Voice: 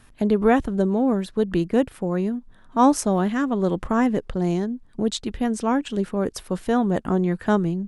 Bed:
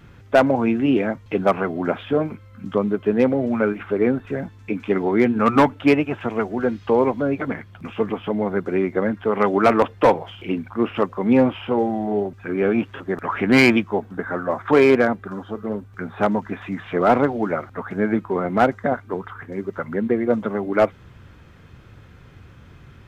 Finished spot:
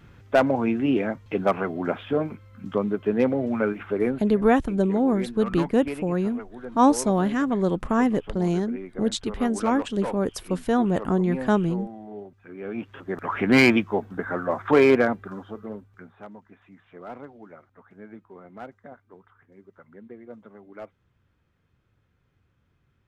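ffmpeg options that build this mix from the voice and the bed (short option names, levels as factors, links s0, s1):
-filter_complex "[0:a]adelay=4000,volume=0.891[s0];[1:a]volume=3.16,afade=t=out:st=4:d=0.32:silence=0.237137,afade=t=in:st=12.62:d=0.79:silence=0.199526,afade=t=out:st=14.94:d=1.28:silence=0.0944061[s1];[s0][s1]amix=inputs=2:normalize=0"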